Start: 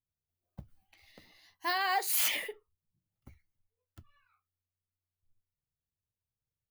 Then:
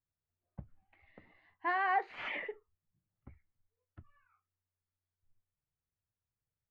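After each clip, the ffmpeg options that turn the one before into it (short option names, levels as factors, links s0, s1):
-af "lowpass=f=2100:w=0.5412,lowpass=f=2100:w=1.3066"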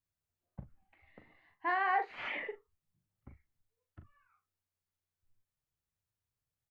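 -filter_complex "[0:a]asplit=2[s0][s1];[s1]adelay=39,volume=0.376[s2];[s0][s2]amix=inputs=2:normalize=0"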